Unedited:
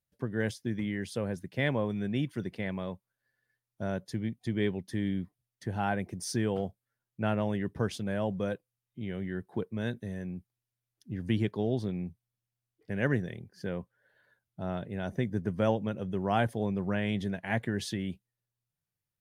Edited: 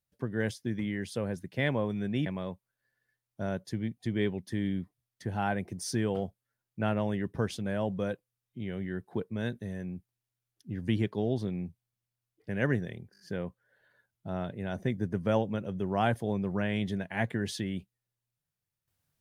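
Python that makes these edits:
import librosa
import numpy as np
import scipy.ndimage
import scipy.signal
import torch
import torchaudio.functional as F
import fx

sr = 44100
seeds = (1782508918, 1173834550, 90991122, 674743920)

y = fx.edit(x, sr, fx.cut(start_s=2.26, length_s=0.41),
    fx.stutter(start_s=13.53, slice_s=0.02, count=5), tone=tone)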